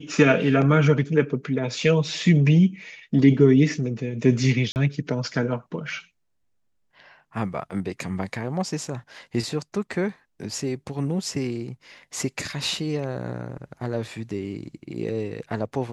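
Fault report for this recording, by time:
4.72–4.76 s: dropout 39 ms

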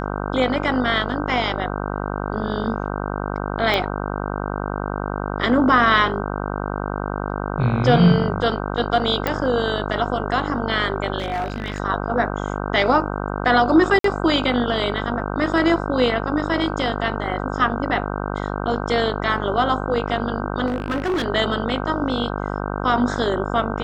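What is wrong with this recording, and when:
buzz 50 Hz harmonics 31 -26 dBFS
3.74 s: pop -9 dBFS
9.27 s: pop -8 dBFS
11.18–11.80 s: clipped -20 dBFS
13.99–14.04 s: dropout 53 ms
20.66–21.26 s: clipped -18.5 dBFS

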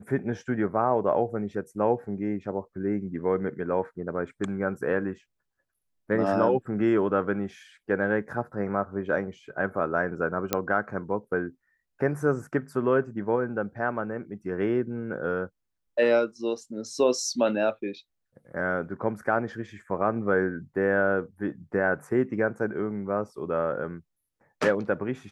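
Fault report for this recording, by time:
10.53 s: pop -7 dBFS

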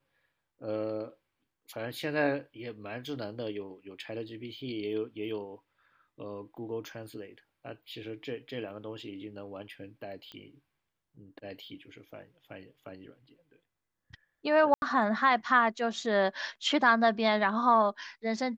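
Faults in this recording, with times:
10.32 s: pop -31 dBFS
14.74–14.82 s: dropout 81 ms

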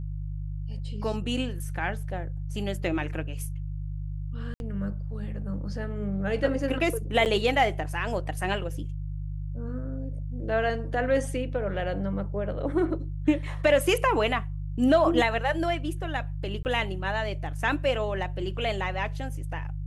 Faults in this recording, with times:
hum 50 Hz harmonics 3 -33 dBFS
4.54–4.60 s: dropout 61 ms
7.25–7.26 s: dropout 8.7 ms
16.63–16.65 s: dropout 19 ms

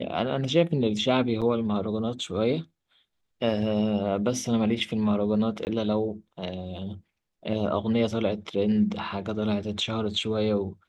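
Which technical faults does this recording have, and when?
1.41–1.42 s: dropout 7.1 ms
5.65–5.67 s: dropout 19 ms

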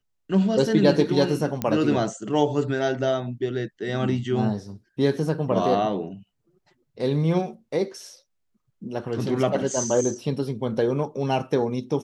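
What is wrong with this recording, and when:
1.62 s: pop -11 dBFS

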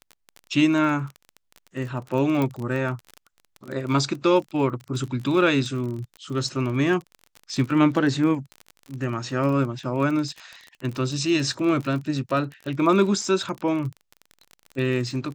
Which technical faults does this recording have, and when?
crackle 29 per s -30 dBFS
2.42 s: pop

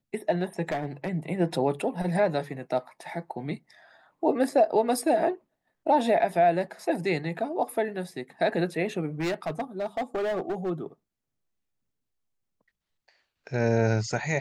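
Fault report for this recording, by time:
0.69–1.10 s: clipped -24 dBFS
9.20–10.71 s: clipped -25 dBFS

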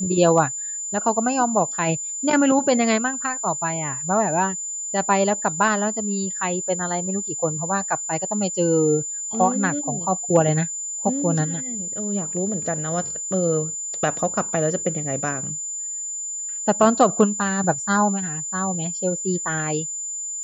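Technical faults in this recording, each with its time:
whine 7.1 kHz -27 dBFS

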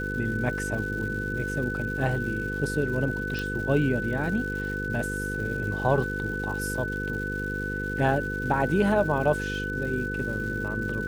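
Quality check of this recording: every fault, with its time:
buzz 50 Hz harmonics 10 -33 dBFS
crackle 330 per s -37 dBFS
whine 1.5 kHz -31 dBFS
3.39 s: pop

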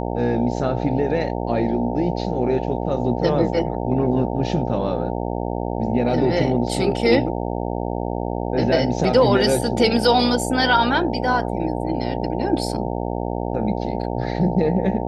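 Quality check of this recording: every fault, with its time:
buzz 60 Hz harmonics 15 -25 dBFS

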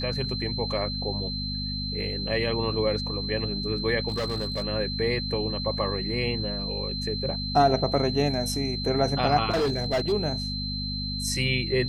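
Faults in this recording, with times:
hum 50 Hz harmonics 5 -33 dBFS
whine 4.1 kHz -32 dBFS
4.08–4.64 s: clipped -24 dBFS
9.50–10.13 s: clipped -21 dBFS

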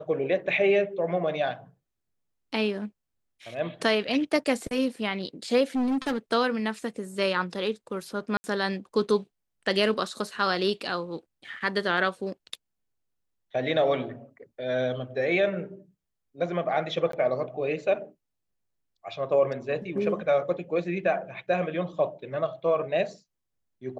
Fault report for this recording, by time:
5.75–6.18 s: clipped -23 dBFS
8.37–8.44 s: dropout 70 ms
17.12–17.13 s: dropout 13 ms

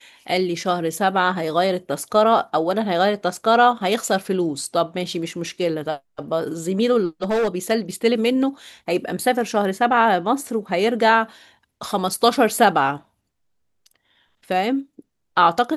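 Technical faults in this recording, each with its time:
7.23–7.58 s: clipped -16.5 dBFS

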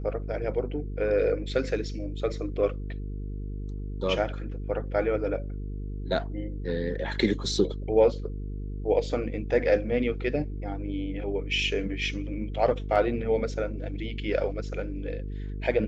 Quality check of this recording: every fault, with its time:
buzz 50 Hz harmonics 9 -34 dBFS

